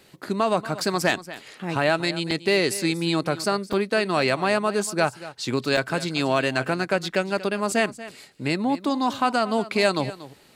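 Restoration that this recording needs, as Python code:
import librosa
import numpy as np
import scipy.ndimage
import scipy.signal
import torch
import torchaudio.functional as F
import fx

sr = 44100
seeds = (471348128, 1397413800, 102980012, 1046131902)

y = fx.fix_declip(x, sr, threshold_db=-9.0)
y = fx.fix_interpolate(y, sr, at_s=(2.31, 3.73, 5.77), length_ms=2.7)
y = fx.fix_echo_inverse(y, sr, delay_ms=235, level_db=-16.0)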